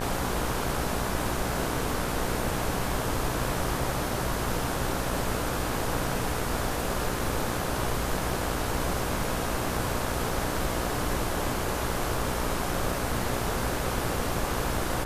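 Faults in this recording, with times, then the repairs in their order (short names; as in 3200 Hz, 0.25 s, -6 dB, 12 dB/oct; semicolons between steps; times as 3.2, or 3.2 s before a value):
buzz 60 Hz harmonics 29 -34 dBFS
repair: de-hum 60 Hz, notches 29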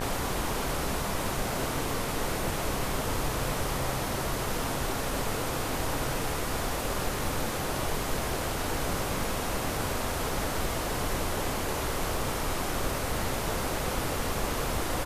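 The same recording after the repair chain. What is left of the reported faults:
none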